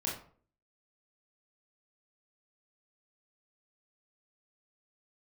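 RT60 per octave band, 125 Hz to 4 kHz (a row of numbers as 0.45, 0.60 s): 0.55, 0.55, 0.50, 0.45, 0.35, 0.30 s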